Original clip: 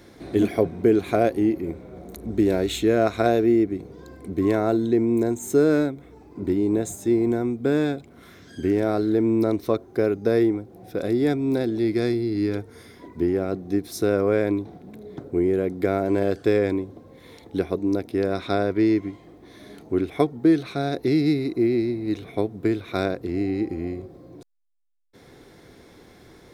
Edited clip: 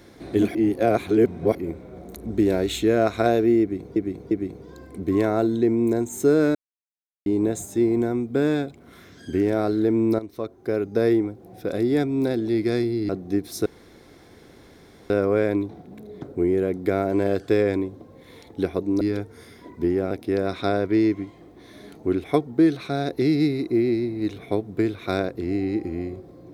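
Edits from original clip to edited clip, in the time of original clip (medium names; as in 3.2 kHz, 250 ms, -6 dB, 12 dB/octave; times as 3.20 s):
0.55–1.55 s: reverse
3.61–3.96 s: loop, 3 plays
5.85–6.56 s: mute
9.49–10.33 s: fade in, from -14 dB
12.39–13.49 s: move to 17.97 s
14.06 s: insert room tone 1.44 s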